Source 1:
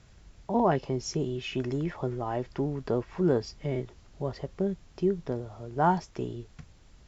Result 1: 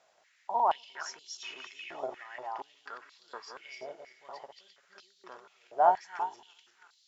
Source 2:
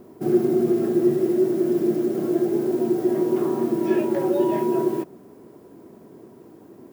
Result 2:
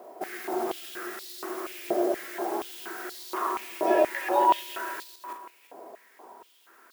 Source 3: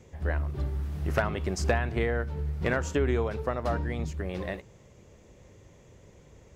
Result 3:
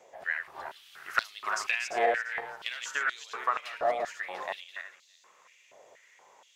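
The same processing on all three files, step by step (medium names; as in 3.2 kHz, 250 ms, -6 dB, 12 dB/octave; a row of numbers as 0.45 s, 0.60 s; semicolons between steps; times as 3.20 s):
backward echo that repeats 172 ms, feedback 49%, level -5.5 dB; step-sequenced high-pass 4.2 Hz 670–4100 Hz; peak normalisation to -9 dBFS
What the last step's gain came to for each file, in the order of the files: -7.0 dB, +1.0 dB, -1.0 dB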